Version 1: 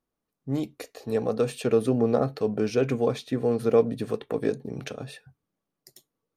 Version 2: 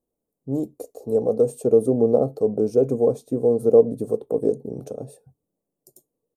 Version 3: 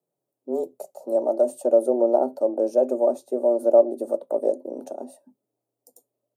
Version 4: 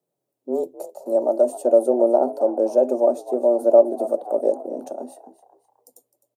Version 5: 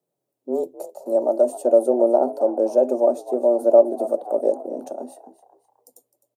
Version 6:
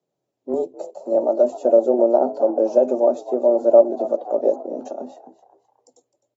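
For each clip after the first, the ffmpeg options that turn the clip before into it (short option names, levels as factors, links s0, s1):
-af "firequalizer=gain_entry='entry(130,0);entry(490,7);entry(1800,-28);entry(7700,2)':delay=0.05:min_phase=1"
-af "afreqshift=120,volume=0.841"
-filter_complex "[0:a]asplit=4[s0][s1][s2][s3];[s1]adelay=258,afreqshift=76,volume=0.158[s4];[s2]adelay=516,afreqshift=152,volume=0.0603[s5];[s3]adelay=774,afreqshift=228,volume=0.0229[s6];[s0][s4][s5][s6]amix=inputs=4:normalize=0,volume=1.33"
-af anull
-af "volume=1.12" -ar 44100 -c:a aac -b:a 24k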